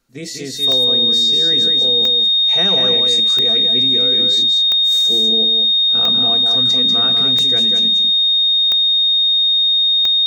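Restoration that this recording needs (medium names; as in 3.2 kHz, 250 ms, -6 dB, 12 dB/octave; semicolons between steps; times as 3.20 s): de-click; band-stop 3.7 kHz, Q 30; inverse comb 193 ms -5 dB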